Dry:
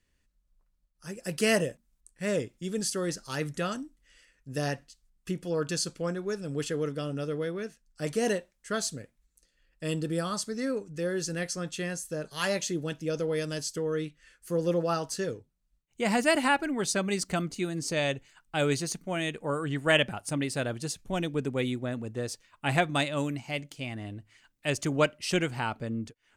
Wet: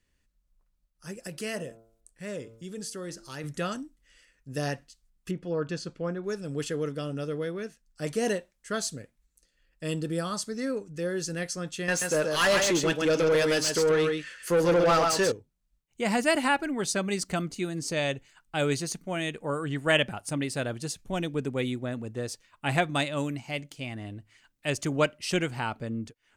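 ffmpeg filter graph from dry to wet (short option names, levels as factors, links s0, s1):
-filter_complex "[0:a]asettb=1/sr,asplit=3[s0][s1][s2];[s0]atrim=end=1.274[s3];[s1]atrim=start=1.27:end=3.44,asetpts=PTS-STARTPTS,afade=t=in:d=0.004:c=qsin,afade=t=out:st=2.166:d=0.004:c=qsin,bandreject=f=113.2:t=h:w=4,bandreject=f=226.4:t=h:w=4,bandreject=f=339.6:t=h:w=4,bandreject=f=452.8:t=h:w=4,bandreject=f=566:t=h:w=4,bandreject=f=679.2:t=h:w=4,bandreject=f=792.4:t=h:w=4,bandreject=f=905.6:t=h:w=4,bandreject=f=1018.8:t=h:w=4,bandreject=f=1132:t=h:w=4,bandreject=f=1245.2:t=h:w=4,bandreject=f=1358.4:t=h:w=4,bandreject=f=1471.6:t=h:w=4,acompressor=threshold=0.00501:ratio=1.5:attack=3.2:release=140:knee=1:detection=peak[s4];[s2]atrim=start=3.436[s5];[s3][s4]acrossfade=d=0.004:c1=hsin:c2=qsin[s6];[s6][s5]acrossfade=d=0.004:c1=qsin:c2=hsin,asettb=1/sr,asplit=3[s7][s8][s9];[s7]atrim=end=5.314[s10];[s8]atrim=start=5.31:end=6.24,asetpts=PTS-STARTPTS,afade=t=in:d=0.004:c=qsin,afade=t=out:st=0.926:d=0.004:c=qsin,lowpass=f=3700:p=1,aemphasis=mode=reproduction:type=50kf[s11];[s9]atrim=start=6.236[s12];[s10][s11]acrossfade=d=0.004:c1=hsin:c2=qsin[s13];[s13][s12]acrossfade=d=0.004:c1=qsin:c2=hsin,asettb=1/sr,asplit=3[s14][s15][s16];[s14]atrim=end=11.884[s17];[s15]atrim=start=11.88:end=15.32,asetpts=PTS-STARTPTS,afade=t=in:d=0.004:c=qsin,afade=t=out:st=3.436:d=0.004:c=qsin,aecho=1:1:133:0.473,atrim=end_sample=151704,asplit=2[s18][s19];[s19]highpass=f=720:p=1,volume=12.6,asoftclip=type=tanh:threshold=0.188[s20];[s18][s20]amix=inputs=2:normalize=0,lowpass=f=4300:p=1,volume=0.501[s21];[s16]atrim=start=15.316[s22];[s17][s21]acrossfade=d=0.004:c1=hsin:c2=qsin[s23];[s23][s22]acrossfade=d=0.004:c1=qsin:c2=hsin"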